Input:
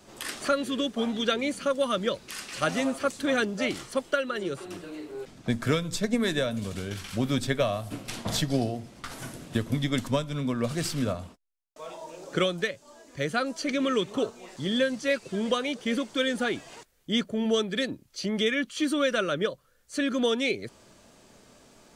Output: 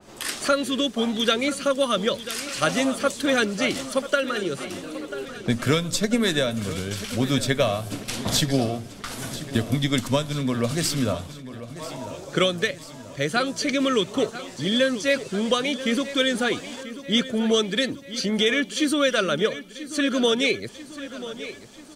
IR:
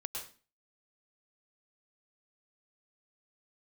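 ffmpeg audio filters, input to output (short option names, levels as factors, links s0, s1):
-filter_complex "[0:a]asplit=2[s0][s1];[s1]aecho=0:1:989|1978|2967|3956|4945|5934:0.2|0.11|0.0604|0.0332|0.0183|0.01[s2];[s0][s2]amix=inputs=2:normalize=0,adynamicequalizer=threshold=0.00631:dfrequency=2700:dqfactor=0.7:tfrequency=2700:tqfactor=0.7:attack=5:release=100:ratio=0.375:range=2:mode=boostabove:tftype=highshelf,volume=1.58"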